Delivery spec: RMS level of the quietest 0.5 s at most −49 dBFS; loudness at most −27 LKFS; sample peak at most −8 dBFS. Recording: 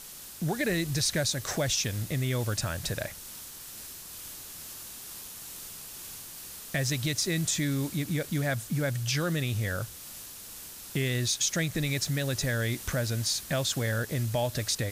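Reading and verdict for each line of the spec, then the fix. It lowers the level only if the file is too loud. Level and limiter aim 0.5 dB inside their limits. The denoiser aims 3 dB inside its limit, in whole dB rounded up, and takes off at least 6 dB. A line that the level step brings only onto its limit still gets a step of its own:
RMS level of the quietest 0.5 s −44 dBFS: out of spec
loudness −30.5 LKFS: in spec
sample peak −14.0 dBFS: in spec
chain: broadband denoise 8 dB, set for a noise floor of −44 dBFS

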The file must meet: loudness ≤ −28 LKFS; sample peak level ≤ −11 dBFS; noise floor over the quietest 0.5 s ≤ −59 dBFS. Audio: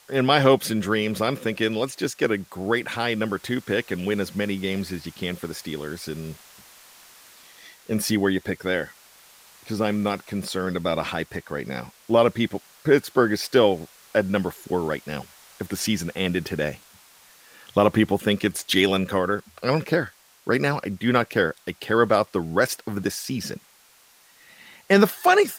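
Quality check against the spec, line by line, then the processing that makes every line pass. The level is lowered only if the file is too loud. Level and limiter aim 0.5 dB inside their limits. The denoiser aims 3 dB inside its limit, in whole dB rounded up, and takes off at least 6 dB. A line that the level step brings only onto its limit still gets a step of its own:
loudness −24.0 LKFS: out of spec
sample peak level −5.0 dBFS: out of spec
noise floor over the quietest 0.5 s −56 dBFS: out of spec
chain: level −4.5 dB
brickwall limiter −11.5 dBFS

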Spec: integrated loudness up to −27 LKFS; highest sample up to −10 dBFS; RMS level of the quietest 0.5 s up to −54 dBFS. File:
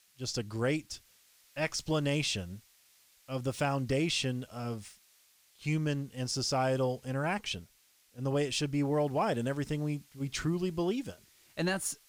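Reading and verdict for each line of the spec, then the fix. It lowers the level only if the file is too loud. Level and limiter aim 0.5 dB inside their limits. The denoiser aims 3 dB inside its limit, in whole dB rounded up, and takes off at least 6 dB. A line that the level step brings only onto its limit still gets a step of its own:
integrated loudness −33.0 LKFS: in spec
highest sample −19.0 dBFS: in spec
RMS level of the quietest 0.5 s −66 dBFS: in spec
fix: no processing needed

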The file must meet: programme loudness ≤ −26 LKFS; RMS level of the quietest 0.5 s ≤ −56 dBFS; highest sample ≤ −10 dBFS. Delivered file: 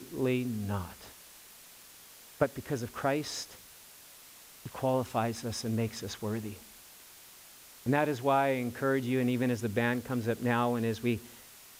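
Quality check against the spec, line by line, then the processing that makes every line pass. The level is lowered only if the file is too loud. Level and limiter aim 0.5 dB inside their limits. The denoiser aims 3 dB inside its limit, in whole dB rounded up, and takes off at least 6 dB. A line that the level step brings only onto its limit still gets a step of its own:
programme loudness −32.0 LKFS: in spec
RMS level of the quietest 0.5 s −53 dBFS: out of spec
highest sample −11.0 dBFS: in spec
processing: broadband denoise 6 dB, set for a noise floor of −53 dBFS

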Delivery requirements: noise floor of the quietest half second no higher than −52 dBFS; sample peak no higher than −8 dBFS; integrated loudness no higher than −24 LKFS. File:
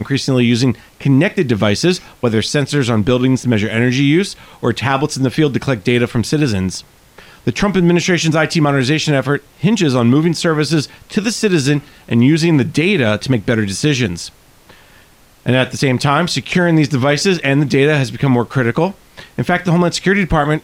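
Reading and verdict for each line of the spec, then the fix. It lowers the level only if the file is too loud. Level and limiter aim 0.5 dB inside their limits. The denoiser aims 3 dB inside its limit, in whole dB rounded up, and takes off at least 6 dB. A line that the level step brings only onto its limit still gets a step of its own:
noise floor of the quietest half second −46 dBFS: out of spec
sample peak −2.5 dBFS: out of spec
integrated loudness −15.0 LKFS: out of spec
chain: level −9.5 dB

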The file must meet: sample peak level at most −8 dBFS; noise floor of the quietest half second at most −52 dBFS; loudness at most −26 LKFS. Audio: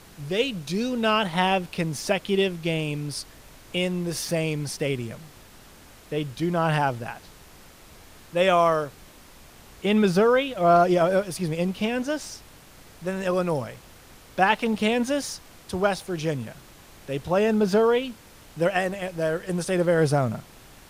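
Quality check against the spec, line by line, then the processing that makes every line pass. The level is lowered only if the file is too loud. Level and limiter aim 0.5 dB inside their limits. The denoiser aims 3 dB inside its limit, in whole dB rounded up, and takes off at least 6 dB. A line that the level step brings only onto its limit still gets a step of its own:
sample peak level −6.0 dBFS: out of spec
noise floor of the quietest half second −49 dBFS: out of spec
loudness −24.5 LKFS: out of spec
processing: broadband denoise 6 dB, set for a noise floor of −49 dBFS
level −2 dB
brickwall limiter −8.5 dBFS

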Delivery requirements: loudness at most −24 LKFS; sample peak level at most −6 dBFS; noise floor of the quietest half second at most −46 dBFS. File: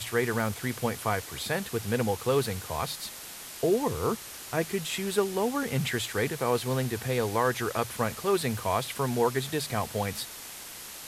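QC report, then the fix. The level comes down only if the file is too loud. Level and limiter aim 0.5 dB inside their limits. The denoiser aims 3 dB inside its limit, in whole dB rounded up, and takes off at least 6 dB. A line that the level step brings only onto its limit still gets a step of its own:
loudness −29.5 LKFS: in spec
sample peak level −12.0 dBFS: in spec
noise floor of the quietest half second −43 dBFS: out of spec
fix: broadband denoise 6 dB, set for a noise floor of −43 dBFS

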